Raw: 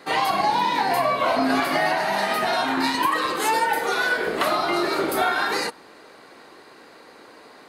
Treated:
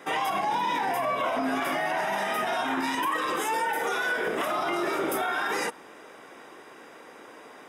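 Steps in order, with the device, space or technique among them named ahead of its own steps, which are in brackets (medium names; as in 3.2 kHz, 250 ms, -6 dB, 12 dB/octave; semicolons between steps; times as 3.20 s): PA system with an anti-feedback notch (high-pass 120 Hz 6 dB/octave; Butterworth band-stop 4.3 kHz, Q 3.7; peak limiter -19.5 dBFS, peak gain reduction 9.5 dB)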